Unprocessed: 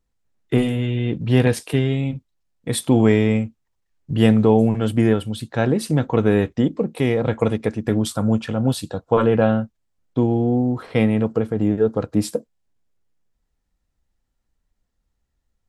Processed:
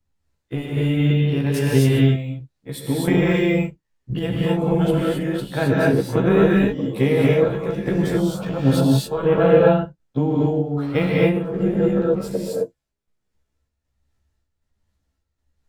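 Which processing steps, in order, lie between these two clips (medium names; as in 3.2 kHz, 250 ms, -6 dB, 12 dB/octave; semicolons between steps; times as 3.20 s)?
short-time spectra conjugated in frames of 30 ms; square tremolo 1.3 Hz, depth 60%, duty 45%; gated-style reverb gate 290 ms rising, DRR -4.5 dB; decimation joined by straight lines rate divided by 2×; trim +2 dB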